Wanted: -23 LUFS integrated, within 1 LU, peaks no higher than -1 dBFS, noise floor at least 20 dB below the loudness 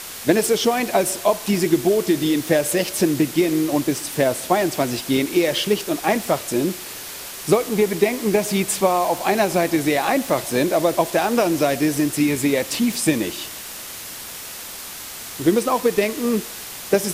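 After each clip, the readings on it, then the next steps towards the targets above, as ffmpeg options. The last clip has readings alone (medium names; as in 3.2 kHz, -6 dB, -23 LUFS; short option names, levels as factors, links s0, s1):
noise floor -34 dBFS; noise floor target -40 dBFS; loudness -20.0 LUFS; peak level -3.0 dBFS; loudness target -23.0 LUFS
-> -af "afftdn=nr=6:nf=-34"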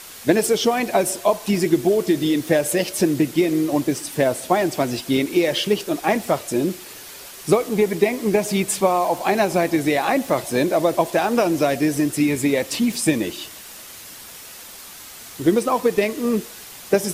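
noise floor -40 dBFS; noise floor target -41 dBFS
-> -af "afftdn=nr=6:nf=-40"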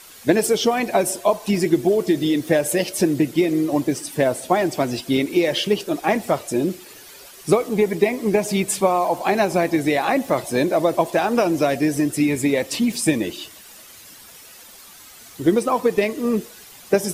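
noise floor -44 dBFS; loudness -20.5 LUFS; peak level -3.0 dBFS; loudness target -23.0 LUFS
-> -af "volume=0.75"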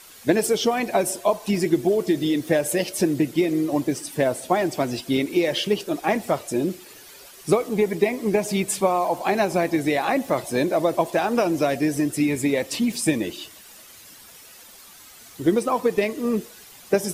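loudness -23.0 LUFS; peak level -5.5 dBFS; noise floor -46 dBFS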